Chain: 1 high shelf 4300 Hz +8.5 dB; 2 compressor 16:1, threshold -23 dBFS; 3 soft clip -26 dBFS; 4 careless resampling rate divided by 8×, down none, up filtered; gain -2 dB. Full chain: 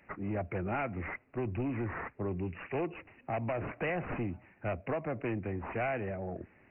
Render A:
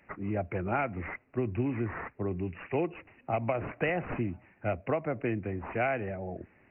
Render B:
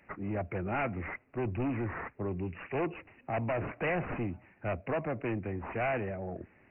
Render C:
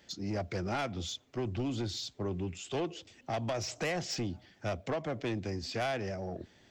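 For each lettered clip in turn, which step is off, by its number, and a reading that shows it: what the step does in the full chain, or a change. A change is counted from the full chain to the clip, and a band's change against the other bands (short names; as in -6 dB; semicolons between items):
3, distortion -12 dB; 2, mean gain reduction 1.5 dB; 4, 2 kHz band -1.5 dB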